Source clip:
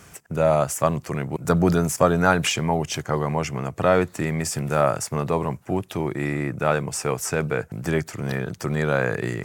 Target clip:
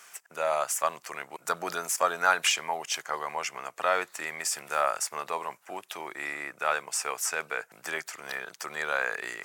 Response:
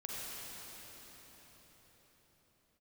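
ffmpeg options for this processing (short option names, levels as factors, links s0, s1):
-af "highpass=960,volume=0.891"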